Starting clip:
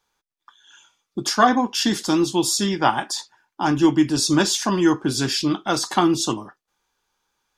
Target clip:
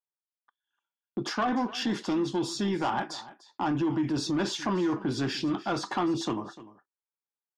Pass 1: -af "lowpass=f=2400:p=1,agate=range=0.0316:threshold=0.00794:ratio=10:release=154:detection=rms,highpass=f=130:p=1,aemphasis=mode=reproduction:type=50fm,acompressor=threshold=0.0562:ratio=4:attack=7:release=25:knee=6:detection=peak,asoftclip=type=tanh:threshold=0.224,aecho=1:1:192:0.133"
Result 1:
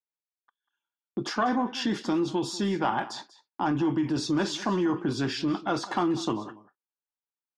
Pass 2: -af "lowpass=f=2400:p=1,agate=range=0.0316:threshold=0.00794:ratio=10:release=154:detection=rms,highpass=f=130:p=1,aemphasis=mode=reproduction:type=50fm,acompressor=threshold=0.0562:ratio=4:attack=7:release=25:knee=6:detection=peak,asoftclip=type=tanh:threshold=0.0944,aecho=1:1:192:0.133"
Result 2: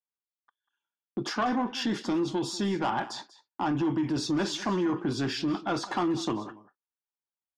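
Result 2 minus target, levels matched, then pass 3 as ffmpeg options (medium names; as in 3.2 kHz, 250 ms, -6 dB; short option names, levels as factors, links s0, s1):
echo 106 ms early
-af "lowpass=f=2400:p=1,agate=range=0.0316:threshold=0.00794:ratio=10:release=154:detection=rms,highpass=f=130:p=1,aemphasis=mode=reproduction:type=50fm,acompressor=threshold=0.0562:ratio=4:attack=7:release=25:knee=6:detection=peak,asoftclip=type=tanh:threshold=0.0944,aecho=1:1:298:0.133"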